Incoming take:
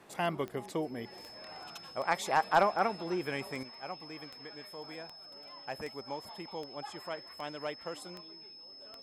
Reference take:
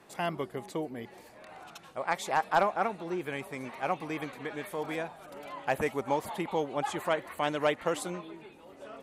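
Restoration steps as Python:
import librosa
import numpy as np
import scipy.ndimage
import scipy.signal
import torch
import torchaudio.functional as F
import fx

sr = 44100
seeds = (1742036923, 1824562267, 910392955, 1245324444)

y = fx.fix_declick_ar(x, sr, threshold=10.0)
y = fx.notch(y, sr, hz=5200.0, q=30.0)
y = fx.fix_level(y, sr, at_s=3.63, step_db=11.0)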